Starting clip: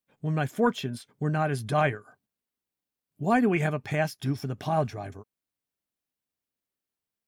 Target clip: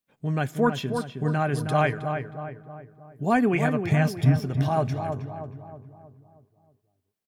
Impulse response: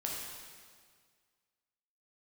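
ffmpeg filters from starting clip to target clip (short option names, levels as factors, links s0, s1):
-filter_complex "[0:a]asplit=3[s0][s1][s2];[s0]afade=t=out:st=3.82:d=0.02[s3];[s1]asubboost=boost=5.5:cutoff=180,afade=t=in:st=3.82:d=0.02,afade=t=out:st=4.43:d=0.02[s4];[s2]afade=t=in:st=4.43:d=0.02[s5];[s3][s4][s5]amix=inputs=3:normalize=0,asplit=2[s6][s7];[s7]adelay=316,lowpass=f=1600:p=1,volume=0.501,asplit=2[s8][s9];[s9]adelay=316,lowpass=f=1600:p=1,volume=0.5,asplit=2[s10][s11];[s11]adelay=316,lowpass=f=1600:p=1,volume=0.5,asplit=2[s12][s13];[s13]adelay=316,lowpass=f=1600:p=1,volume=0.5,asplit=2[s14][s15];[s15]adelay=316,lowpass=f=1600:p=1,volume=0.5,asplit=2[s16][s17];[s17]adelay=316,lowpass=f=1600:p=1,volume=0.5[s18];[s6][s8][s10][s12][s14][s16][s18]amix=inputs=7:normalize=0,asplit=2[s19][s20];[1:a]atrim=start_sample=2205[s21];[s20][s21]afir=irnorm=-1:irlink=0,volume=0.0562[s22];[s19][s22]amix=inputs=2:normalize=0,volume=1.12"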